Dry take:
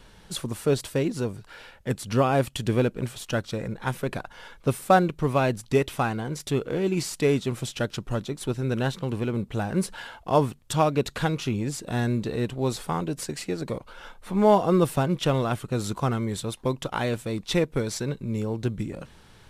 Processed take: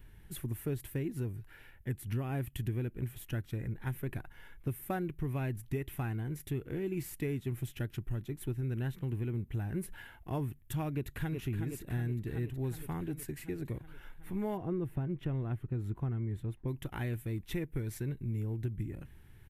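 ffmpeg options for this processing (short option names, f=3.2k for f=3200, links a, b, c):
-filter_complex "[0:a]asplit=2[a][b];[b]afade=t=in:st=10.94:d=0.01,afade=t=out:st=11.39:d=0.01,aecho=0:1:370|740|1110|1480|1850|2220|2590|2960|3330|3700|4070:0.501187|0.350831|0.245582|0.171907|0.120335|0.0842345|0.0589642|0.0412749|0.0288924|0.0202247|0.0141573[c];[a][c]amix=inputs=2:normalize=0,asplit=3[d][e][f];[d]afade=t=out:st=14.56:d=0.02[g];[e]lowpass=f=1.2k:p=1,afade=t=in:st=14.56:d=0.02,afade=t=out:st=16.67:d=0.02[h];[f]afade=t=in:st=16.67:d=0.02[i];[g][h][i]amix=inputs=3:normalize=0,firequalizer=gain_entry='entry(110,0);entry(190,-10);entry(350,-6);entry(510,-19);entry(770,-15);entry(1200,-18);entry(1800,-7);entry(4500,-23);entry(8500,-14);entry(12000,0)':delay=0.05:min_phase=1,acompressor=threshold=-31dB:ratio=6"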